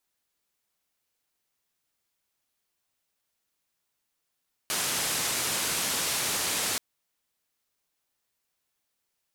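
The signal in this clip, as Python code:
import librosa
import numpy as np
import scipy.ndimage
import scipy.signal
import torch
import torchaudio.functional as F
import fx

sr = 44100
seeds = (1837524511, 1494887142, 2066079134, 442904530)

y = fx.band_noise(sr, seeds[0], length_s=2.08, low_hz=83.0, high_hz=11000.0, level_db=-29.0)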